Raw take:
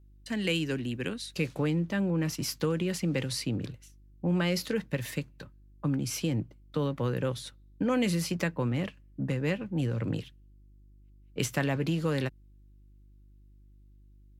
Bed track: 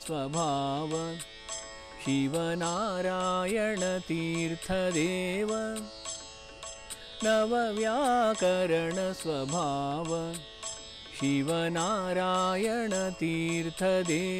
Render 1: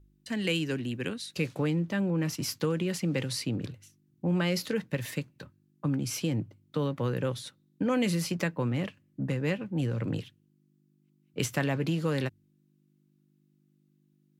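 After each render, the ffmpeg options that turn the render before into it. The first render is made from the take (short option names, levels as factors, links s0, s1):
-af "bandreject=f=50:t=h:w=4,bandreject=f=100:t=h:w=4"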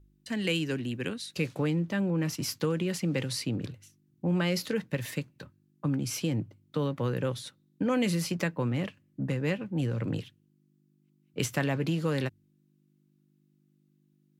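-af anull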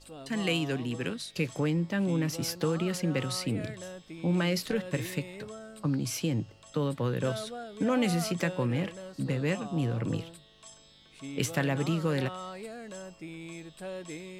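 -filter_complex "[1:a]volume=0.237[s0];[0:a][s0]amix=inputs=2:normalize=0"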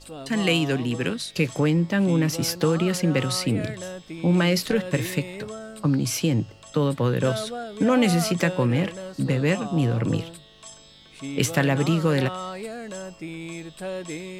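-af "volume=2.37"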